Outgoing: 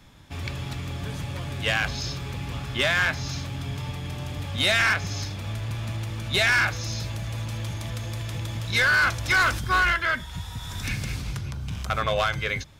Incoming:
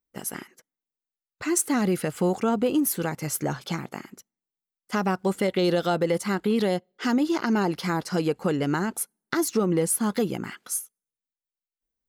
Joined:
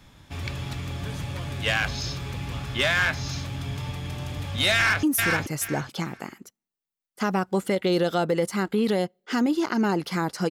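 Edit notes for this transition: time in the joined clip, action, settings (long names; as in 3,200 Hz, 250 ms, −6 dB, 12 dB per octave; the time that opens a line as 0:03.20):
outgoing
0:04.75–0:05.03: delay throw 430 ms, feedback 20%, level −3 dB
0:05.03: continue with incoming from 0:02.75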